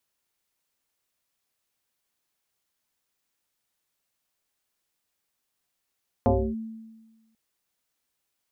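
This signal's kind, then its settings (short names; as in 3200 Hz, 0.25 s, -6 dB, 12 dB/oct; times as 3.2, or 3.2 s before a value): FM tone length 1.09 s, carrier 223 Hz, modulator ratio 0.72, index 3.7, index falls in 0.29 s linear, decay 1.29 s, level -15.5 dB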